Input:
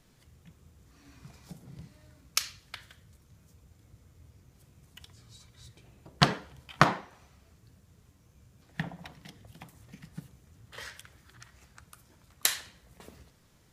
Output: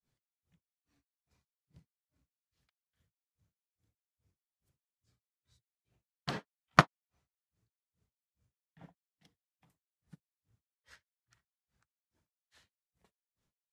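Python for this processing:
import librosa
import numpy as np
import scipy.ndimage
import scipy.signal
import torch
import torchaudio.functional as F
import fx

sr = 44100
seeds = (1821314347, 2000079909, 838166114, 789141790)

y = fx.granulator(x, sr, seeds[0], grain_ms=214.0, per_s=2.4, spray_ms=100.0, spread_st=0)
y = fx.upward_expand(y, sr, threshold_db=-54.0, expansion=1.5)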